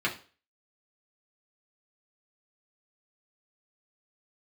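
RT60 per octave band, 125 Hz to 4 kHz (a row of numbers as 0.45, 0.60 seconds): 0.35, 0.35, 0.40, 0.35, 0.35, 0.35 seconds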